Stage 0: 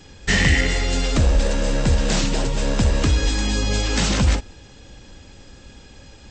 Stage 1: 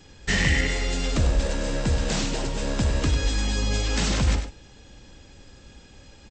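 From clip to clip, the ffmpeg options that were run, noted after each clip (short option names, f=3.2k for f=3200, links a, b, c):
-af "aecho=1:1:98:0.355,volume=-5dB"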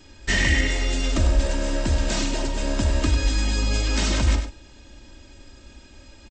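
-af "aecho=1:1:3.2:0.59"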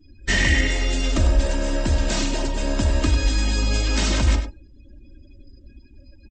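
-af "afftdn=nr=30:nf=-43,volume=1.5dB"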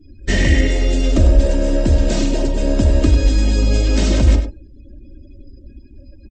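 -af "lowshelf=f=720:t=q:w=1.5:g=7.5,volume=-1dB"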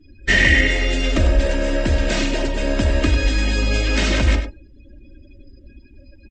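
-af "equalizer=f=2k:t=o:w=2.2:g=14,volume=-5dB"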